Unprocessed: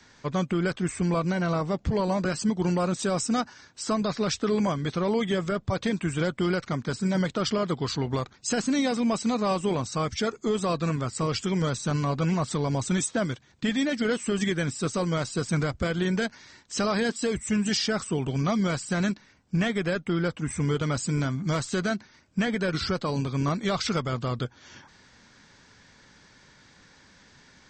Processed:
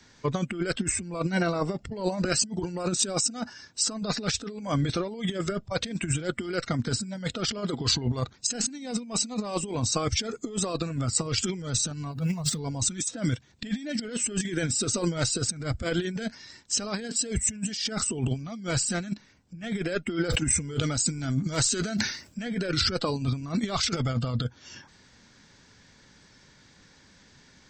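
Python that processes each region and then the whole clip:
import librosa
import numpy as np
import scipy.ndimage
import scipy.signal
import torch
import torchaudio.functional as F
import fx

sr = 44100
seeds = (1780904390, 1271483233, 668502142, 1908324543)

y = fx.chain(x, sr, fx.law_mismatch(coded='mu'),
    fx.peak_eq(hz=150.0, db=8.0, octaves=0.29),
    fx.over_compress(threshold_db=-26.0, ratio=-1.0), at=(12.12, 12.59))
y = fx.chain(y, sr, fx.bass_treble(bass_db=-2, treble_db=3),
    fx.sustainer(db_per_s=82.0), at=(20.1, 22.43))
y = fx.noise_reduce_blind(y, sr, reduce_db=10)
y = fx.peak_eq(y, sr, hz=1200.0, db=-4.5, octaves=2.4)
y = fx.over_compress(y, sr, threshold_db=-33.0, ratio=-0.5)
y = y * librosa.db_to_amplitude(5.5)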